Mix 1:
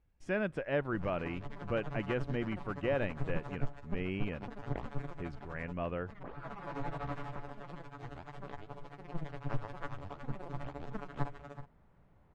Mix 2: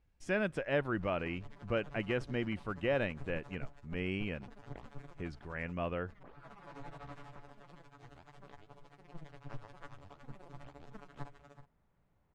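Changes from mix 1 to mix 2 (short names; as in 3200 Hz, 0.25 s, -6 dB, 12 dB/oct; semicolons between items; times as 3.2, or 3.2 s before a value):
background -10.0 dB; master: add high shelf 3700 Hz +10.5 dB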